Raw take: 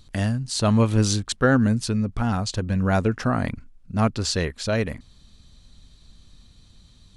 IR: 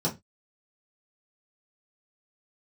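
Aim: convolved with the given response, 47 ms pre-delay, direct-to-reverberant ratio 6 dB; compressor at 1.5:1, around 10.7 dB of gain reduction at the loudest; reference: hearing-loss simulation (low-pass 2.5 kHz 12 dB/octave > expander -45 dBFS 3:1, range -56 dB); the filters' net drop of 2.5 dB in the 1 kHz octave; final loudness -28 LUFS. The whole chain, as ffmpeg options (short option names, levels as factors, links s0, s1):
-filter_complex "[0:a]equalizer=f=1000:t=o:g=-3.5,acompressor=threshold=0.00562:ratio=1.5,asplit=2[s0][s1];[1:a]atrim=start_sample=2205,adelay=47[s2];[s1][s2]afir=irnorm=-1:irlink=0,volume=0.188[s3];[s0][s3]amix=inputs=2:normalize=0,lowpass=2500,agate=range=0.00158:threshold=0.00562:ratio=3,volume=1.41"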